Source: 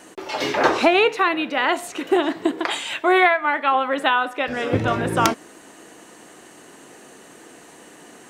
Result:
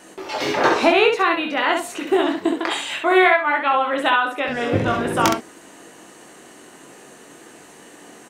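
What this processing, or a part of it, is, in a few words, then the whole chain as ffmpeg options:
slapback doubling: -filter_complex "[0:a]asplit=3[link_01][link_02][link_03];[link_02]adelay=21,volume=-5dB[link_04];[link_03]adelay=67,volume=-5dB[link_05];[link_01][link_04][link_05]amix=inputs=3:normalize=0,volume=-1dB"

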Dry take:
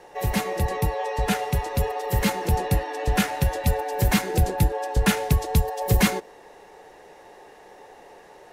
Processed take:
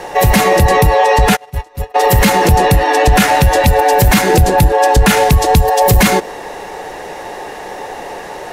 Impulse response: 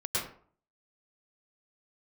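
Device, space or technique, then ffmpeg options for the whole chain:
mastering chain: -filter_complex "[0:a]equalizer=frequency=420:width_type=o:width=0.59:gain=-3,acompressor=threshold=-24dB:ratio=2,asoftclip=type=tanh:threshold=-15.5dB,alimiter=level_in=22.5dB:limit=-1dB:release=50:level=0:latency=1,asplit=3[link_01][link_02][link_03];[link_01]afade=type=out:start_time=1.35:duration=0.02[link_04];[link_02]agate=range=-33dB:threshold=-5dB:ratio=16:detection=peak,afade=type=in:start_time=1.35:duration=0.02,afade=type=out:start_time=1.94:duration=0.02[link_05];[link_03]afade=type=in:start_time=1.94:duration=0.02[link_06];[link_04][link_05][link_06]amix=inputs=3:normalize=0,volume=-1dB"

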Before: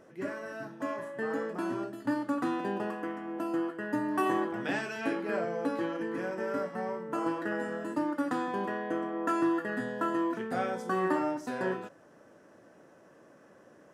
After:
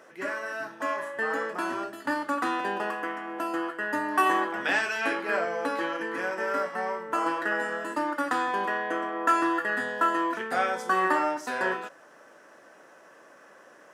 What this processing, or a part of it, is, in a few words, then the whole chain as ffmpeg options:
filter by subtraction: -filter_complex "[0:a]asplit=2[link_01][link_02];[link_02]lowpass=1400,volume=-1[link_03];[link_01][link_03]amix=inputs=2:normalize=0,volume=8dB"

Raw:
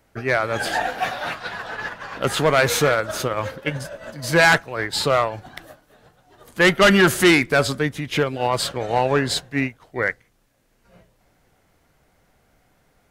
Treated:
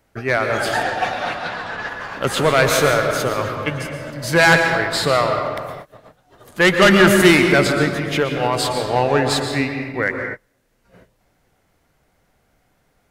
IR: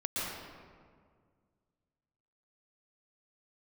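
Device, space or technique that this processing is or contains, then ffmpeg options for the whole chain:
keyed gated reverb: -filter_complex "[0:a]asplit=3[link_01][link_02][link_03];[1:a]atrim=start_sample=2205[link_04];[link_02][link_04]afir=irnorm=-1:irlink=0[link_05];[link_03]apad=whole_len=577851[link_06];[link_05][link_06]sidechaingate=range=-33dB:threshold=-51dB:ratio=16:detection=peak,volume=-6dB[link_07];[link_01][link_07]amix=inputs=2:normalize=0,asettb=1/sr,asplit=3[link_08][link_09][link_10];[link_08]atrim=end=0.834[link_11];[link_09]atrim=start=0.83:end=1.89,asetpts=PTS-STARTPTS,afade=type=in:duration=0.004:curve=qsin,afade=type=out:start_time=1.056:duration=0.004:curve=qsin,lowpass=8300[link_12];[link_10]atrim=start=1.886[link_13];[link_11][link_12]acrossfade=duration=0.004:curve1=hsin:curve2=qsin[link_14];[link_14][link_13]acrossfade=duration=0.004:curve1=qsin:curve2=hsin,volume=-1.5dB"

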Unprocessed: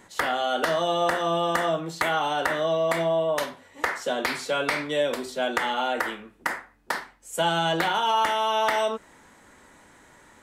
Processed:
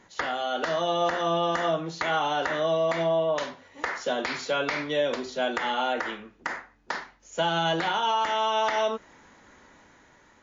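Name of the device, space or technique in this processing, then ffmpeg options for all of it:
low-bitrate web radio: -af "dynaudnorm=framelen=170:gausssize=9:maxgain=3.5dB,alimiter=limit=-11dB:level=0:latency=1:release=102,volume=-3.5dB" -ar 16000 -c:a libmp3lame -b:a 40k

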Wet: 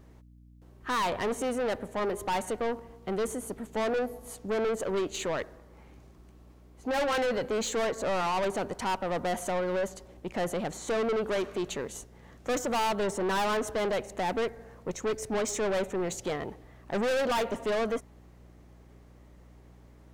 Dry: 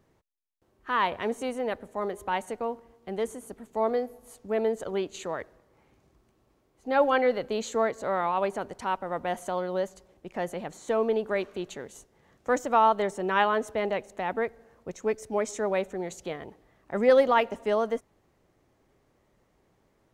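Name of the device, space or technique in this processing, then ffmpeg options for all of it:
valve amplifier with mains hum: -af "aeval=exprs='(tanh(44.7*val(0)+0.15)-tanh(0.15))/44.7':channel_layout=same,aeval=exprs='val(0)+0.001*(sin(2*PI*60*n/s)+sin(2*PI*2*60*n/s)/2+sin(2*PI*3*60*n/s)/3+sin(2*PI*4*60*n/s)/4+sin(2*PI*5*60*n/s)/5)':channel_layout=same,volume=7dB"

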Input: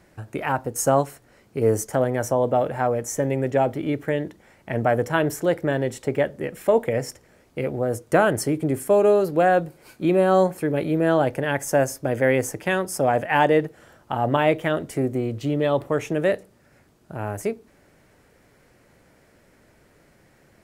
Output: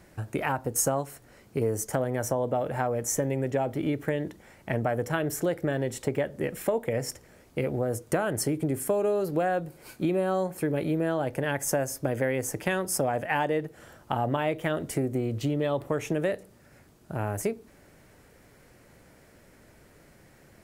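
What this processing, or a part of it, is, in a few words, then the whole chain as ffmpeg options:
ASMR close-microphone chain: -filter_complex "[0:a]lowshelf=frequency=160:gain=3,acompressor=threshold=-24dB:ratio=5,highshelf=frequency=7400:gain=5,asettb=1/sr,asplit=3[link_01][link_02][link_03];[link_01]atrim=end=5.114[link_04];[link_02]atrim=start=5.11:end=5.77,asetpts=PTS-STARTPTS,afade=type=in:duration=0.004:curve=qsin,afade=type=out:start_time=0.656:duration=0.004:curve=qsin,bandreject=frequency=950:width=9.8[link_05];[link_03]atrim=start=5.766[link_06];[link_04][link_05]acrossfade=duration=0.004:curve1=hsin:curve2=qsin[link_07];[link_07][link_06]acrossfade=duration=0.004:curve1=qsin:curve2=hsin"

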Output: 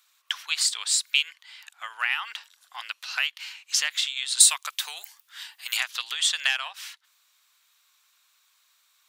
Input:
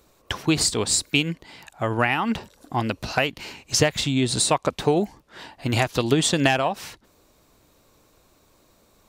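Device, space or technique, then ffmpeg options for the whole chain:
headphones lying on a table: -filter_complex "[0:a]highpass=frequency=1300:width=0.5412,highpass=frequency=1300:width=1.3066,equalizer=frequency=3300:width_type=o:width=0.44:gain=5,asettb=1/sr,asplit=3[link_01][link_02][link_03];[link_01]atrim=end=4.404[link_04];[link_02]atrim=start=4.4:end=5.77,asetpts=PTS-STARTPTS,afade=type=in:duration=0.004:curve=qsin,afade=type=out:start_time=1.366:duration=0.004:curve=qsin,aemphasis=mode=production:type=bsi[link_05];[link_03]atrim=start=5.766[link_06];[link_04][link_05]acrossfade=duration=0.004:curve1=hsin:curve2=qsin[link_07];[link_07][link_06]acrossfade=duration=0.004:curve1=qsin:curve2=hsin,volume=-2dB"

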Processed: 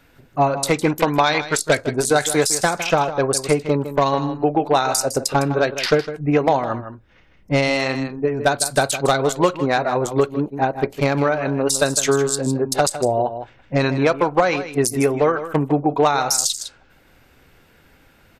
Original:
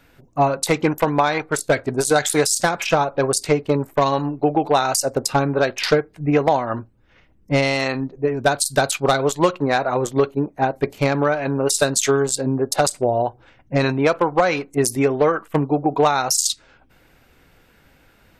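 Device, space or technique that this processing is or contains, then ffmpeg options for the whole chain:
ducked delay: -filter_complex "[0:a]asettb=1/sr,asplit=3[link_01][link_02][link_03];[link_01]atrim=end=0.954[link_04];[link_02]atrim=start=0.95:end=1.75,asetpts=PTS-STARTPTS,afade=type=in:duration=0.004:curve=qsin,afade=type=out:start_time=0.796:duration=0.004:curve=qsin,equalizer=frequency=4300:width=0.7:gain=8[link_05];[link_03]atrim=start=1.746[link_06];[link_04][link_05]acrossfade=duration=0.004:curve1=hsin:curve2=qsin[link_07];[link_07][link_06]acrossfade=duration=0.004:curve1=qsin:curve2=hsin,asplit=3[link_08][link_09][link_10];[link_09]adelay=157,volume=-4dB[link_11];[link_10]apad=whole_len=818129[link_12];[link_11][link_12]sidechaincompress=threshold=-20dB:ratio=10:attack=12:release=1070[link_13];[link_08][link_13]amix=inputs=2:normalize=0"

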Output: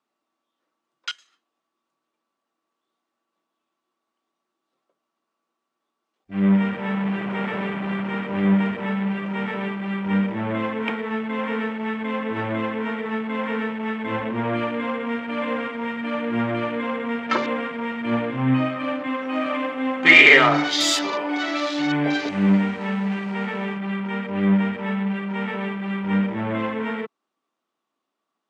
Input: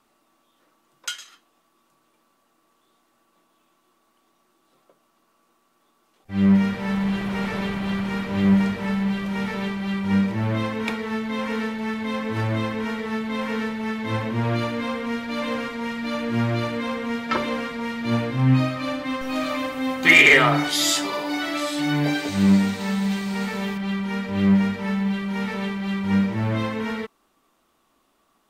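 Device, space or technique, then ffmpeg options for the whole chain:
over-cleaned archive recording: -af "highpass=200,lowpass=6800,afwtdn=0.0178,volume=2dB"

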